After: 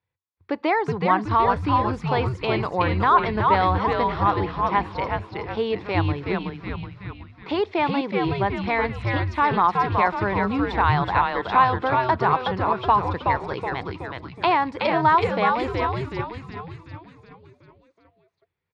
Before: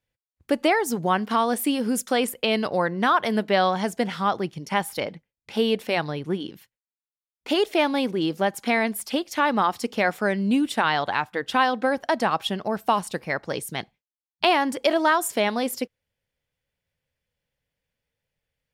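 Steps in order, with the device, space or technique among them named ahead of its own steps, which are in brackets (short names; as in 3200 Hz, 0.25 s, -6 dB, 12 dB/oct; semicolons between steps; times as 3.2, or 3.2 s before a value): frequency-shifting delay pedal into a guitar cabinet (frequency-shifting echo 0.372 s, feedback 53%, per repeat -130 Hz, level -3 dB; speaker cabinet 85–3800 Hz, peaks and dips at 92 Hz +9 dB, 240 Hz -9 dB, 590 Hz -6 dB, 1000 Hz +8 dB, 1600 Hz -3 dB, 3000 Hz -9 dB)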